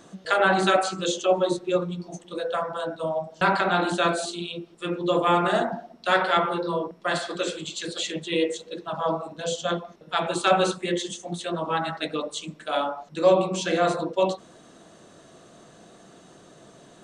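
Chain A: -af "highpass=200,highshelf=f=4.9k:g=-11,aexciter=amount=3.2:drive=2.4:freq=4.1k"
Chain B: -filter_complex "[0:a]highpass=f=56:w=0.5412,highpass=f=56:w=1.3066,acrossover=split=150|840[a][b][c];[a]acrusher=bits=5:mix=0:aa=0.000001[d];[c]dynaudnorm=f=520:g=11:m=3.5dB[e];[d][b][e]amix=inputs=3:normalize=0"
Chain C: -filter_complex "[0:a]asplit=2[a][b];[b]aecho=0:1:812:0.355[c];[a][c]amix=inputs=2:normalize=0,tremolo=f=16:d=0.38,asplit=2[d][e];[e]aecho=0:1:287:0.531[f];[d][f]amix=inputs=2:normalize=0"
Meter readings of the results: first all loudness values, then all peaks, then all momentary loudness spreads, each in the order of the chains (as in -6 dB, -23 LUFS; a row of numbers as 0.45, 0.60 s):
-26.0, -24.0, -26.0 LUFS; -7.0, -5.5, -6.5 dBFS; 11, 11, 8 LU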